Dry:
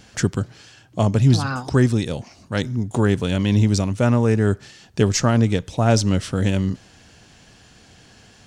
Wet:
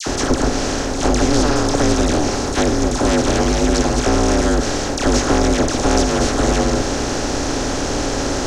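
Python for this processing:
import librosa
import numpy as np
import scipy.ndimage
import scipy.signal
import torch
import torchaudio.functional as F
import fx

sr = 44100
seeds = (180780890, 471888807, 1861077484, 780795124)

y = fx.bin_compress(x, sr, power=0.2)
y = y * np.sin(2.0 * np.pi * 150.0 * np.arange(len(y)) / sr)
y = fx.dispersion(y, sr, late='lows', ms=69.0, hz=1400.0)
y = F.gain(torch.from_numpy(y), -1.5).numpy()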